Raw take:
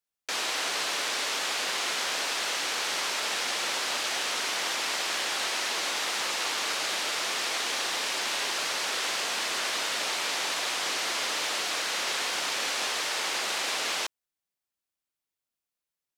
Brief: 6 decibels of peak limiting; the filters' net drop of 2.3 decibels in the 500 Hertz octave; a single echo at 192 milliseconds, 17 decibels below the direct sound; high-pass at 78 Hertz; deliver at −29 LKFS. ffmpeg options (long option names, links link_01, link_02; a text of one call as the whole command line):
ffmpeg -i in.wav -af "highpass=78,equalizer=frequency=500:width_type=o:gain=-3,alimiter=limit=-22dB:level=0:latency=1,aecho=1:1:192:0.141,volume=0.5dB" out.wav